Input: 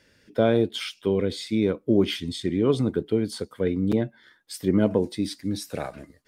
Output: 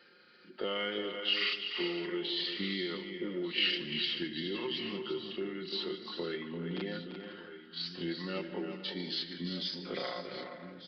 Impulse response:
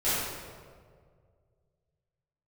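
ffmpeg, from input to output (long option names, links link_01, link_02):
-filter_complex "[0:a]highpass=340,aecho=1:1:5:0.56,acrossover=split=1800[link_01][link_02];[link_01]acompressor=threshold=-36dB:ratio=12[link_03];[link_02]acrusher=bits=5:mode=log:mix=0:aa=0.000001[link_04];[link_03][link_04]amix=inputs=2:normalize=0,asetrate=68011,aresample=44100,atempo=0.64842,aecho=1:1:85|198|250|296|687|700:0.133|0.398|0.188|0.188|0.141|0.158,asplit=2[link_05][link_06];[1:a]atrim=start_sample=2205,asetrate=48510,aresample=44100[link_07];[link_06][link_07]afir=irnorm=-1:irlink=0,volume=-26dB[link_08];[link_05][link_08]amix=inputs=2:normalize=0,asetrate=25442,aresample=44100,aresample=11025,aresample=44100"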